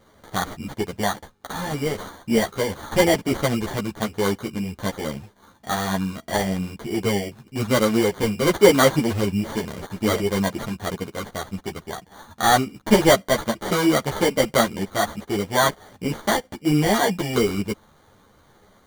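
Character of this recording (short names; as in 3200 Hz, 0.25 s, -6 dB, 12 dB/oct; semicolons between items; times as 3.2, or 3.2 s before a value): aliases and images of a low sample rate 2600 Hz, jitter 0%; a shimmering, thickened sound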